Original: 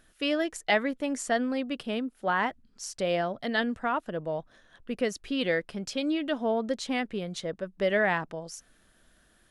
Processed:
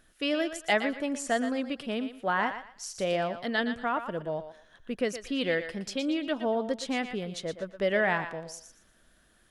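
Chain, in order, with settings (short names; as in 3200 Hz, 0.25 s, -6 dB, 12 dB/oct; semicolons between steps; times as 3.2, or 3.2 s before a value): thinning echo 0.118 s, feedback 27%, high-pass 510 Hz, level -9 dB; gain -1 dB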